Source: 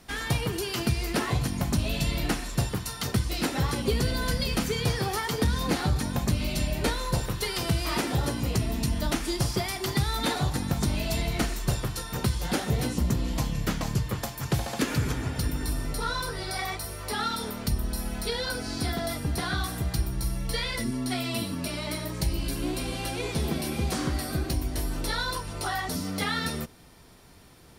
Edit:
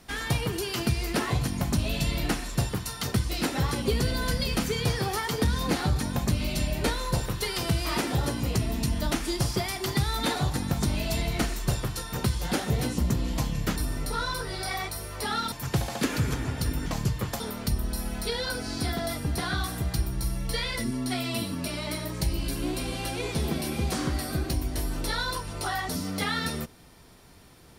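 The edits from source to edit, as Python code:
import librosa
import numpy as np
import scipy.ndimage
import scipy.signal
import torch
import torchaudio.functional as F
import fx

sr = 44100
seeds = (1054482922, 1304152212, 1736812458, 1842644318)

y = fx.edit(x, sr, fx.swap(start_s=13.76, length_s=0.54, other_s=15.64, other_length_s=1.76), tone=tone)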